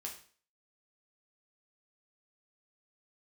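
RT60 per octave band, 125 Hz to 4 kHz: 0.40, 0.45, 0.45, 0.45, 0.45, 0.45 seconds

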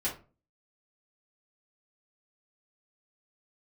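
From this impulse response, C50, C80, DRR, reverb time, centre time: 9.5 dB, 16.5 dB, −8.5 dB, 0.35 s, 22 ms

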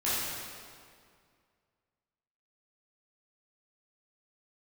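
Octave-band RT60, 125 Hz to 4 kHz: 2.3, 2.3, 2.2, 2.1, 1.9, 1.6 seconds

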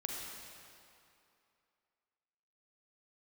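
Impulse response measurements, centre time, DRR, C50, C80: 121 ms, −1.0 dB, 0.0 dB, 1.0 dB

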